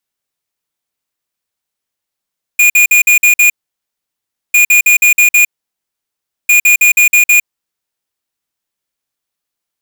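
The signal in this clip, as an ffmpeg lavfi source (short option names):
-f lavfi -i "aevalsrc='0.447*(2*lt(mod(2440*t,1),0.5)-1)*clip(min(mod(mod(t,1.95),0.16),0.11-mod(mod(t,1.95),0.16))/0.005,0,1)*lt(mod(t,1.95),0.96)':d=5.85:s=44100"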